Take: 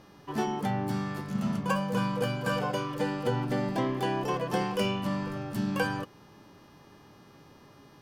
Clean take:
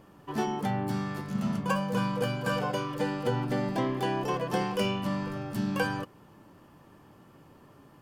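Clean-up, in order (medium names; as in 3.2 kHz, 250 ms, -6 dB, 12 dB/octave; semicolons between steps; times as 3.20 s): de-hum 410.4 Hz, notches 15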